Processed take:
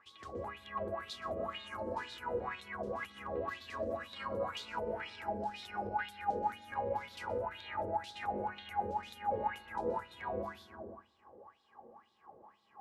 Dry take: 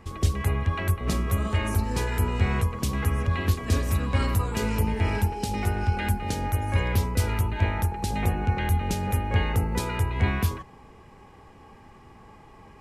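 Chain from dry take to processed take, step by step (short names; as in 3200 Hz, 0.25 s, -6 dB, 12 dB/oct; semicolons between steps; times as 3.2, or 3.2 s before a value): bell 2200 Hz -7 dB 1.1 oct, from 9.81 s -14 dB; reverb RT60 1.4 s, pre-delay 0.121 s, DRR 1.5 dB; limiter -15.5 dBFS, peak gain reduction 6.5 dB; wah 2 Hz 480–3800 Hz, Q 7.2; gain +5.5 dB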